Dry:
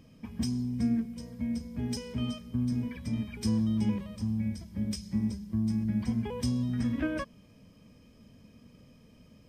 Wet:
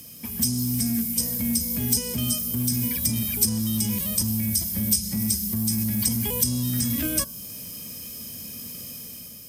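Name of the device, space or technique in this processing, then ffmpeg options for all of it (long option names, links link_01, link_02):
FM broadcast chain: -filter_complex "[0:a]highpass=50,dynaudnorm=framelen=110:gausssize=9:maxgain=6dB,acrossover=split=220|1400|3200|6900[link_01][link_02][link_03][link_04][link_05];[link_01]acompressor=threshold=-28dB:ratio=4[link_06];[link_02]acompressor=threshold=-39dB:ratio=4[link_07];[link_03]acompressor=threshold=-59dB:ratio=4[link_08];[link_04]acompressor=threshold=-53dB:ratio=4[link_09];[link_05]acompressor=threshold=-53dB:ratio=4[link_10];[link_06][link_07][link_08][link_09][link_10]amix=inputs=5:normalize=0,aemphasis=mode=production:type=75fm,alimiter=level_in=0.5dB:limit=-24dB:level=0:latency=1:release=16,volume=-0.5dB,asoftclip=type=hard:threshold=-26dB,lowpass=frequency=15000:width=0.5412,lowpass=frequency=15000:width=1.3066,aemphasis=mode=production:type=75fm,bandreject=frequency=66.56:width_type=h:width=4,bandreject=frequency=133.12:width_type=h:width=4,bandreject=frequency=199.68:width_type=h:width=4,bandreject=frequency=266.24:width_type=h:width=4,bandreject=frequency=332.8:width_type=h:width=4,bandreject=frequency=399.36:width_type=h:width=4,bandreject=frequency=465.92:width_type=h:width=4,bandreject=frequency=532.48:width_type=h:width=4,bandreject=frequency=599.04:width_type=h:width=4,bandreject=frequency=665.6:width_type=h:width=4,bandreject=frequency=732.16:width_type=h:width=4,bandreject=frequency=798.72:width_type=h:width=4,bandreject=frequency=865.28:width_type=h:width=4,bandreject=frequency=931.84:width_type=h:width=4,bandreject=frequency=998.4:width_type=h:width=4,bandreject=frequency=1064.96:width_type=h:width=4,bandreject=frequency=1131.52:width_type=h:width=4,bandreject=frequency=1198.08:width_type=h:width=4,bandreject=frequency=1264.64:width_type=h:width=4,bandreject=frequency=1331.2:width_type=h:width=4,bandreject=frequency=1397.76:width_type=h:width=4,bandreject=frequency=1464.32:width_type=h:width=4,bandreject=frequency=1530.88:width_type=h:width=4,bandreject=frequency=1597.44:width_type=h:width=4,volume=6dB"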